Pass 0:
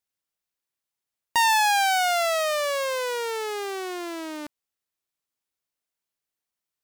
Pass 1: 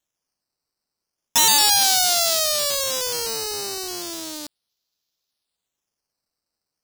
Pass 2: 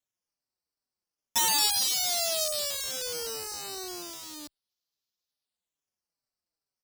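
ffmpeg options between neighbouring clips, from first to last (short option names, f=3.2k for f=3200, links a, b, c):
-af "acrusher=samples=9:mix=1:aa=0.000001:lfo=1:lforange=9:lforate=0.35,highshelf=f=3.1k:t=q:w=1.5:g=13,volume=-2dB"
-filter_complex "[0:a]asplit=2[a][b];[b]adelay=4.7,afreqshift=-2.4[c];[a][c]amix=inputs=2:normalize=1,volume=-6dB"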